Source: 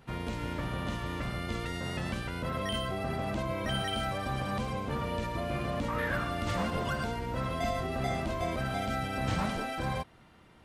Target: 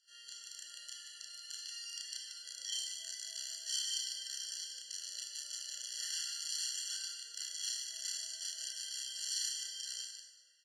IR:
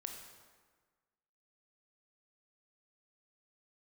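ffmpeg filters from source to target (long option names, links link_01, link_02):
-filter_complex "[0:a]aeval=exprs='(mod(16.8*val(0)+1,2)-1)/16.8':channel_layout=same,asuperpass=centerf=5900:order=4:qfactor=1.5,aecho=1:1:32.07|180.8:1|0.501[link_01];[1:a]atrim=start_sample=2205[link_02];[link_01][link_02]afir=irnorm=-1:irlink=0,afftfilt=real='re*eq(mod(floor(b*sr/1024/680),2),0)':imag='im*eq(mod(floor(b*sr/1024/680),2),0)':win_size=1024:overlap=0.75,volume=7.5dB"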